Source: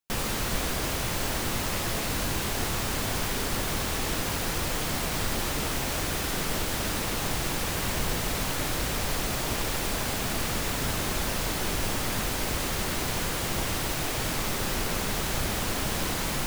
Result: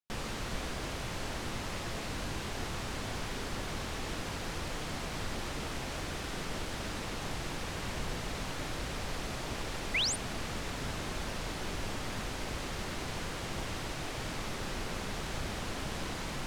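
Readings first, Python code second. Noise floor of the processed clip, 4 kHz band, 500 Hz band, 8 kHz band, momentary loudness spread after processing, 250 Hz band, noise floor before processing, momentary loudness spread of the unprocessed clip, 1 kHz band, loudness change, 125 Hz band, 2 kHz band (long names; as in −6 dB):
−39 dBFS, −7.5 dB, −7.5 dB, −11.5 dB, 1 LU, −7.5 dB, −30 dBFS, 0 LU, −8.0 dB, −9.0 dB, −7.5 dB, −7.5 dB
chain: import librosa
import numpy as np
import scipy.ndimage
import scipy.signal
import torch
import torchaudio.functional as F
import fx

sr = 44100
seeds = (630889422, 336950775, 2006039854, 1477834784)

y = fx.spec_paint(x, sr, seeds[0], shape='rise', start_s=9.94, length_s=0.22, low_hz=1900.0, high_hz=10000.0, level_db=-21.0)
y = fx.air_absorb(y, sr, metres=55.0)
y = F.gain(torch.from_numpy(y), -7.5).numpy()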